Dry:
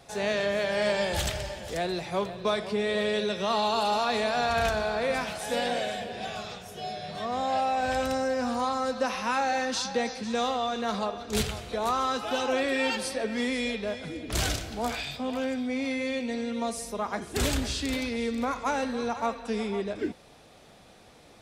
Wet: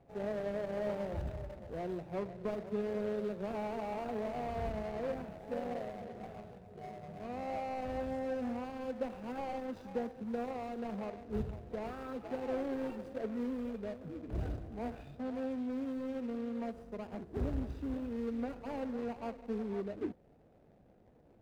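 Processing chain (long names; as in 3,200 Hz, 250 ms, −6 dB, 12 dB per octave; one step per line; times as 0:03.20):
running median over 41 samples
high-shelf EQ 2,700 Hz −10 dB
slew-rate limiting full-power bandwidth 47 Hz
level −6 dB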